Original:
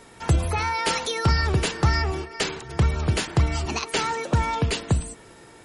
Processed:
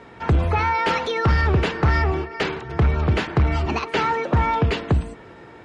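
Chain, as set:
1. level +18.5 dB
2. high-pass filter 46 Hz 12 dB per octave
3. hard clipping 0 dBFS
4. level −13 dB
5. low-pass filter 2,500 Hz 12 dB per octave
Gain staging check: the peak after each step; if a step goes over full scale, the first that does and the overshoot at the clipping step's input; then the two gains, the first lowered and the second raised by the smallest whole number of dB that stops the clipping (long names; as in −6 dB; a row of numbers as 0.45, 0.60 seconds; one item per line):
+9.0, +9.5, 0.0, −13.0, −12.5 dBFS
step 1, 9.5 dB
step 1 +8.5 dB, step 4 −3 dB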